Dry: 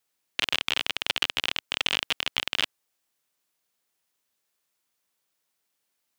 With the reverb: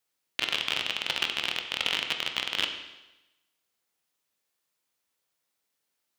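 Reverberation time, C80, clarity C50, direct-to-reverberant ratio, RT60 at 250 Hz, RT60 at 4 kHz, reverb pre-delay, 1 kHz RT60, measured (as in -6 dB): 1.0 s, 8.5 dB, 7.0 dB, 4.0 dB, 1.0 s, 1.0 s, 14 ms, 1.0 s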